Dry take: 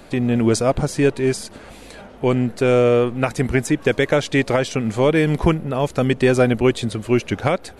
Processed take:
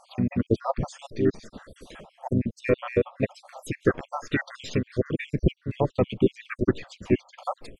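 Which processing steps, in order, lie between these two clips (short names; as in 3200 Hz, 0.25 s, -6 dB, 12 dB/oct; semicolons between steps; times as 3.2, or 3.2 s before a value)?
random spectral dropouts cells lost 72%; dynamic EQ 9300 Hz, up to -6 dB, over -59 dBFS, Q 4.9; treble ducked by the level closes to 2700 Hz, closed at -18.5 dBFS; harmoniser -5 st -11 dB, -4 st -4 dB; gain -4.5 dB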